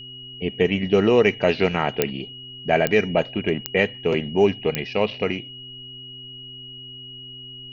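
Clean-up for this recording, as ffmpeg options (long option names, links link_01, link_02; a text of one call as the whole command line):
ffmpeg -i in.wav -af "adeclick=threshold=4,bandreject=frequency=127.5:width_type=h:width=4,bandreject=frequency=255:width_type=h:width=4,bandreject=frequency=382.5:width_type=h:width=4,bandreject=frequency=2900:width=30,agate=range=-21dB:threshold=-31dB" out.wav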